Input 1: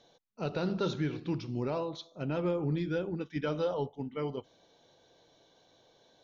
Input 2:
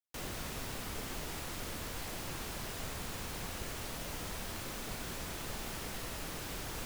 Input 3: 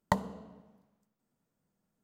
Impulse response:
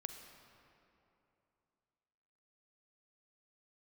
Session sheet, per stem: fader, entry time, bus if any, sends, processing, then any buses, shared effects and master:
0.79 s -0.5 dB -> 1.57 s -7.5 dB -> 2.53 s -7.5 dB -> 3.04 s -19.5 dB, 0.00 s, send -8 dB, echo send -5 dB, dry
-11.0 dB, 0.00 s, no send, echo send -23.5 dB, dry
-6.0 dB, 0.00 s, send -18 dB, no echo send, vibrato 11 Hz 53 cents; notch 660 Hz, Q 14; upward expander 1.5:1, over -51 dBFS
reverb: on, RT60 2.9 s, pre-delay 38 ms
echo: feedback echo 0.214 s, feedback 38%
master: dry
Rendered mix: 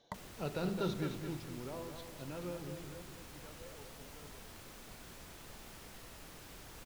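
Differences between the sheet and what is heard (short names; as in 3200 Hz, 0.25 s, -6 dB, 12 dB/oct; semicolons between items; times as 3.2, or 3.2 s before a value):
stem 1 -0.5 dB -> -7.0 dB; stem 3 -6.0 dB -> -17.5 dB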